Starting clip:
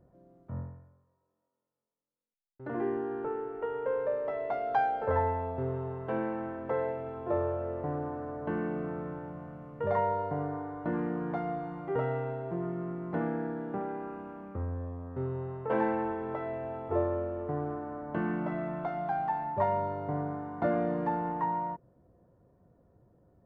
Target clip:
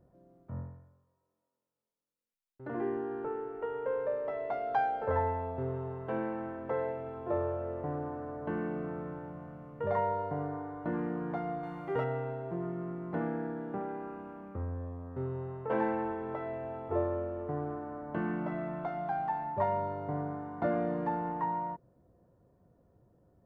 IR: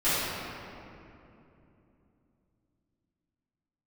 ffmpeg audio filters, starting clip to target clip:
-filter_complex "[0:a]asettb=1/sr,asplit=3[a][b][c];[a]atrim=end=11.634[d];[b]atrim=start=11.63:end=12.04,asetpts=PTS-STARTPTS,afade=t=in:d=0.004:c=qsin,afade=t=out:st=0.406:d=0.004:c=qsin,highshelf=f=2.3k:g=11[e];[c]atrim=start=12.036[f];[d][e]acrossfade=d=0.004:c1=hsin:c2=qsin[g];[g][f]acrossfade=d=0.004:c1=qsin:c2=hsin,volume=-2dB"

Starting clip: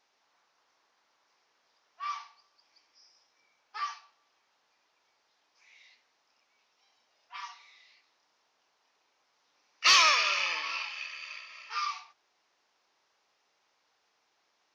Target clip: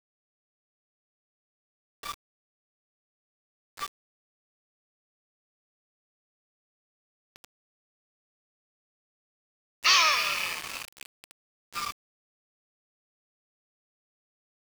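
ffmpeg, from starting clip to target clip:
-af "aeval=exprs='val(0)*gte(abs(val(0)),0.0266)':c=same"

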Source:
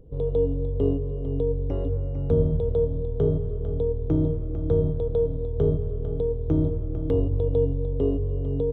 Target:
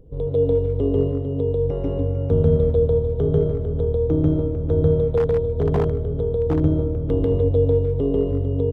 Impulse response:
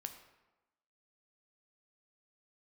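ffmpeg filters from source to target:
-filter_complex "[0:a]asplit=2[a][b];[b]adelay=150,highpass=300,lowpass=3.4k,asoftclip=type=hard:threshold=-18.5dB,volume=-11dB[c];[a][c]amix=inputs=2:normalize=0,asplit=2[d][e];[1:a]atrim=start_sample=2205,adelay=142[f];[e][f]afir=irnorm=-1:irlink=0,volume=4.5dB[g];[d][g]amix=inputs=2:normalize=0,asettb=1/sr,asplit=3[h][i][j];[h]atrim=end=5.174[k];[i]atrim=start=5.17:end=6.6,asetpts=PTS-STARTPTS,afade=t=in:d=0.004:c=qsin,afade=t=out:st=1.426:d=0.004:c=qsin,aeval=exprs='0.2*(abs(mod(val(0)/0.2+3,4)-2)-1)':c=same[l];[j]atrim=start=6.596[m];[k][l]acrossfade=d=0.004:c1=hsin:c2=qsin[n];[n][m]acrossfade=d=0.004:c1=qsin:c2=hsin,volume=1.5dB"

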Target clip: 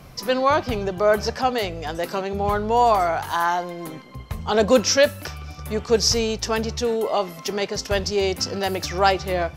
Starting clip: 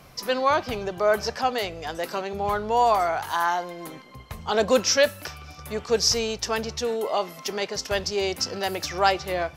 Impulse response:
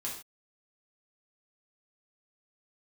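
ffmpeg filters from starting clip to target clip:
-af "lowshelf=f=320:g=7.5,volume=1.5dB"

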